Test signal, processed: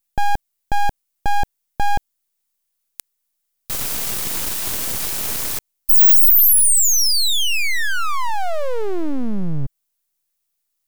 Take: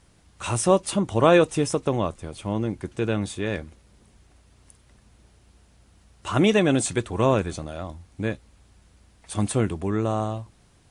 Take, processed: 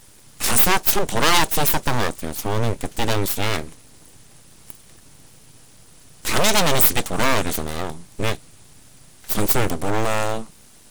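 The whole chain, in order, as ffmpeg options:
ffmpeg -i in.wav -af "aeval=exprs='abs(val(0))':channel_layout=same,apsyclip=18.5dB,crystalizer=i=2:c=0,volume=-10.5dB" out.wav

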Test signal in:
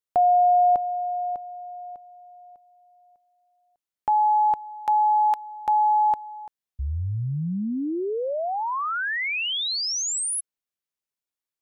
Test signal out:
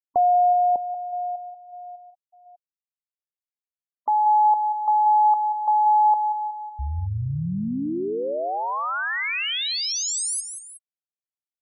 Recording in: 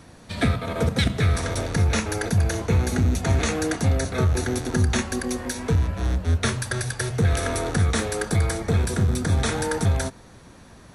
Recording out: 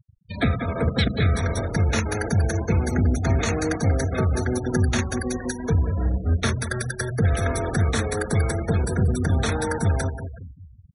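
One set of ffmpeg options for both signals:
ffmpeg -i in.wav -af "aecho=1:1:185|370|555|740|925|1110:0.355|0.185|0.0959|0.0499|0.0259|0.0135,afftfilt=real='re*gte(hypot(re,im),0.0398)':imag='im*gte(hypot(re,im),0.0398)':win_size=1024:overlap=0.75" out.wav

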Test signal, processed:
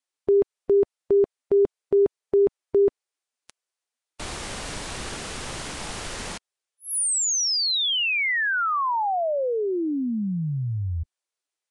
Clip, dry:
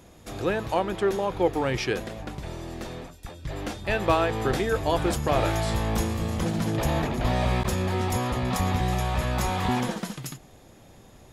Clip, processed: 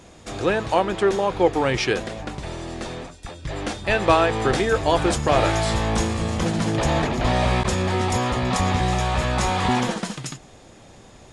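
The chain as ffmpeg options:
ffmpeg -i in.wav -af "lowshelf=frequency=310:gain=-3.5,volume=6dB" -ar 22050 -c:a libvorbis -b:a 48k out.ogg

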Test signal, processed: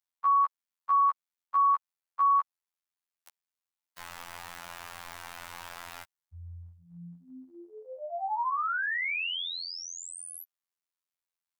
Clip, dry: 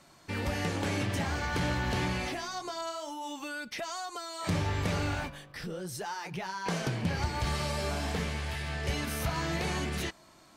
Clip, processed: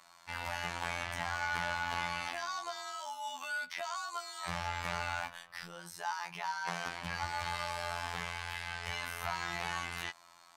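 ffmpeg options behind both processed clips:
ffmpeg -i in.wav -filter_complex "[0:a]afftfilt=real='hypot(re,im)*cos(PI*b)':imag='0':win_size=2048:overlap=0.75,lowshelf=frequency=590:width_type=q:width=1.5:gain=-13.5,acrossover=split=3100[link_01][link_02];[link_02]acompressor=threshold=-41dB:ratio=4:attack=1:release=60[link_03];[link_01][link_03]amix=inputs=2:normalize=0,volume=2dB" out.wav

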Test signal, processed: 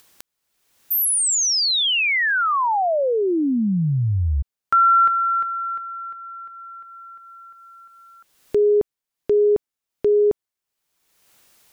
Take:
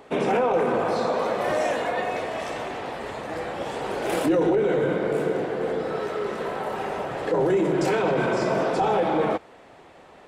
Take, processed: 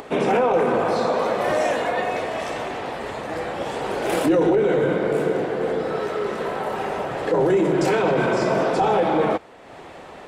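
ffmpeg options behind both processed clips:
ffmpeg -i in.wav -af "acompressor=mode=upward:threshold=-35dB:ratio=2.5,volume=3dB" out.wav

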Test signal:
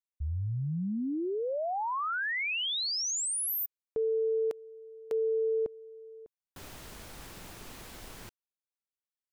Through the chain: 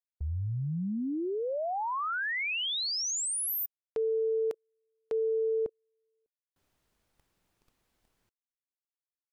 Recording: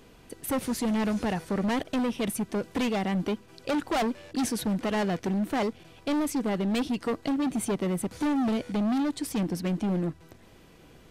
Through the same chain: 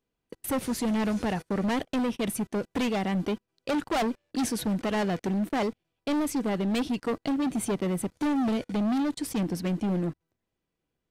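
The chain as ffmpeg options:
ffmpeg -i in.wav -af "agate=range=-30dB:threshold=-42dB:ratio=16:release=38:detection=rms" out.wav

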